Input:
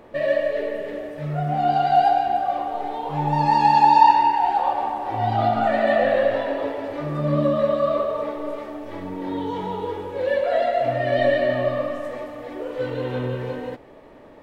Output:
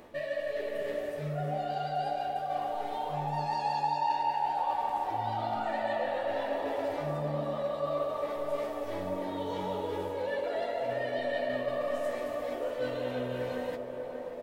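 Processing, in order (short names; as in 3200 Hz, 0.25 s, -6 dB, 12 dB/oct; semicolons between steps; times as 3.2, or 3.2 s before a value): reverse; compressor 4:1, threshold -28 dBFS, peak gain reduction 17 dB; reverse; high shelf 3800 Hz +11 dB; doubler 12 ms -8 dB; narrowing echo 0.585 s, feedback 72%, band-pass 570 Hz, level -5 dB; gain -5 dB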